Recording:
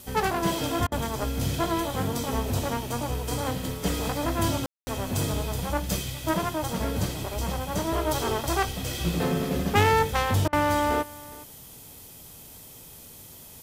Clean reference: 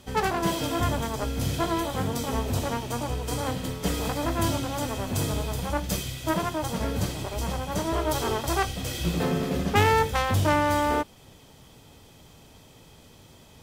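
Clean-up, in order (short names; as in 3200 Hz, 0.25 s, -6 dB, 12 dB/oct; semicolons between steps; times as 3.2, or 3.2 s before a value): room tone fill 4.66–4.87; interpolate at 0.87/10.48, 47 ms; noise print and reduce 6 dB; inverse comb 0.412 s -20.5 dB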